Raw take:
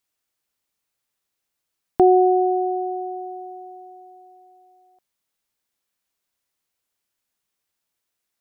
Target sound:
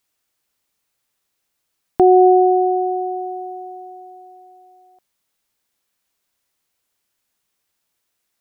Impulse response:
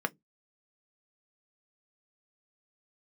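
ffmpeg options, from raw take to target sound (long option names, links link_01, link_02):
-af "alimiter=level_in=10dB:limit=-1dB:release=50:level=0:latency=1,volume=-4dB"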